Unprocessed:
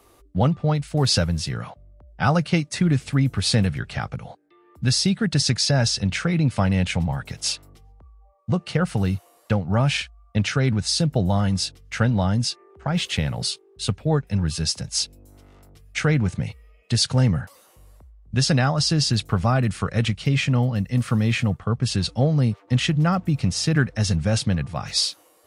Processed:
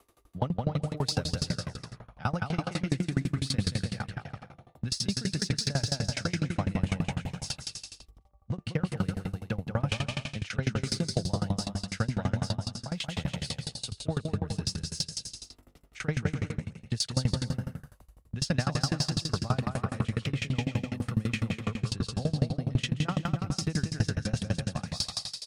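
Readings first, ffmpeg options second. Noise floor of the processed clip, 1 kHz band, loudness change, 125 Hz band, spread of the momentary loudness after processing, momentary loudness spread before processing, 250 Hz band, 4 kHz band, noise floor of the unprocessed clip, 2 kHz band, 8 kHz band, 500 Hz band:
-61 dBFS, -9.0 dB, -9.5 dB, -9.0 dB, 8 LU, 8 LU, -9.0 dB, -9.0 dB, -56 dBFS, -9.5 dB, -9.0 dB, -9.5 dB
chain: -filter_complex "[0:a]aecho=1:1:180|306|394.2|455.9|499.2:0.631|0.398|0.251|0.158|0.1,asplit=2[s0][s1];[s1]asoftclip=type=hard:threshold=0.1,volume=0.299[s2];[s0][s2]amix=inputs=2:normalize=0,aeval=exprs='val(0)*pow(10,-26*if(lt(mod(12*n/s,1),2*abs(12)/1000),1-mod(12*n/s,1)/(2*abs(12)/1000),(mod(12*n/s,1)-2*abs(12)/1000)/(1-2*abs(12)/1000))/20)':c=same,volume=0.562"

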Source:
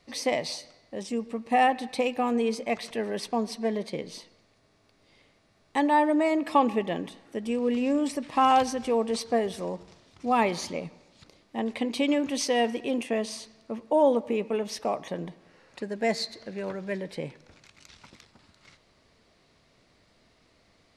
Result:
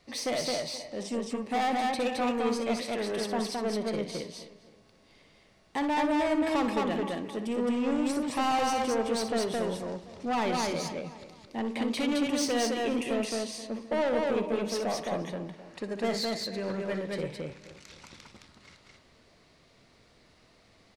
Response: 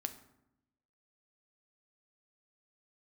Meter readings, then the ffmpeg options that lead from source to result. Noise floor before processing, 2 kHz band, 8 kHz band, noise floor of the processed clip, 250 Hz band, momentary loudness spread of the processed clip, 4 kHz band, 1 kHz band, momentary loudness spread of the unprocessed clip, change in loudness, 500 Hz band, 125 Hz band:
-65 dBFS, -2.0 dB, +1.0 dB, -61 dBFS, -1.5 dB, 12 LU, +0.5 dB, -4.5 dB, 14 LU, -3.0 dB, -2.5 dB, +0.5 dB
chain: -filter_complex "[0:a]asplit=2[s0][s1];[s1]adelay=260,lowpass=f=3400:p=1,volume=0.141,asplit=2[s2][s3];[s3]adelay=260,lowpass=f=3400:p=1,volume=0.41,asplit=2[s4][s5];[s5]adelay=260,lowpass=f=3400:p=1,volume=0.41[s6];[s2][s4][s6]amix=inputs=3:normalize=0[s7];[s0][s7]amix=inputs=2:normalize=0,asoftclip=type=tanh:threshold=0.0501,asplit=2[s8][s9];[s9]aecho=0:1:61.22|215.7:0.316|0.794[s10];[s8][s10]amix=inputs=2:normalize=0"

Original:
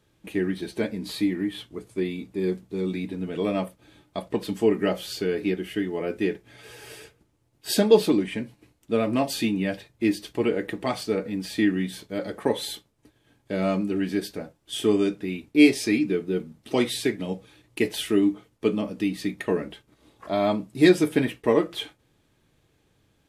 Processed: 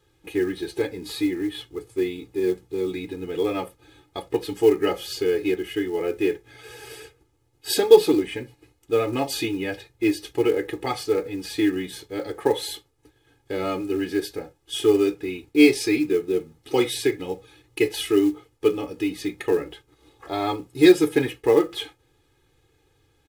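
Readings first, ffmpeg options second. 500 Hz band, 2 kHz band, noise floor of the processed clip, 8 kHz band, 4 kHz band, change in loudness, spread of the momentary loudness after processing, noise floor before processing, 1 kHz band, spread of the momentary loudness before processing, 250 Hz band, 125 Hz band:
+4.0 dB, +1.0 dB, -65 dBFS, +2.0 dB, +2.0 dB, +2.0 dB, 16 LU, -67 dBFS, +2.5 dB, 15 LU, 0.0 dB, -4.0 dB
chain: -af "aecho=1:1:2.4:0.96,acrusher=bits=7:mode=log:mix=0:aa=0.000001,volume=0.891"

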